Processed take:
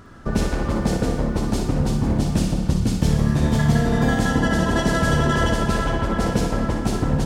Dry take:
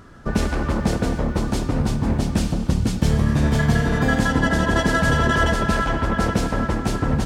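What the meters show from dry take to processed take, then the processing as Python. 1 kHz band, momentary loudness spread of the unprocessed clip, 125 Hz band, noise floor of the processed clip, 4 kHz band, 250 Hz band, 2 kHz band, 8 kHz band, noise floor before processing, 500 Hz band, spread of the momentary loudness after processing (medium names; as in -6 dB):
-1.5 dB, 5 LU, +0.5 dB, -27 dBFS, -0.5 dB, +0.5 dB, -3.5 dB, +0.5 dB, -29 dBFS, +0.5 dB, 4 LU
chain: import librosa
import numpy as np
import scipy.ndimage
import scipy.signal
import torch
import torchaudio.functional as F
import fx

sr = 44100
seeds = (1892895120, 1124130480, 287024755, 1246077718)

p1 = fx.dynamic_eq(x, sr, hz=1700.0, q=0.72, threshold_db=-36.0, ratio=4.0, max_db=-4)
y = p1 + fx.echo_feedback(p1, sr, ms=60, feedback_pct=45, wet_db=-6.5, dry=0)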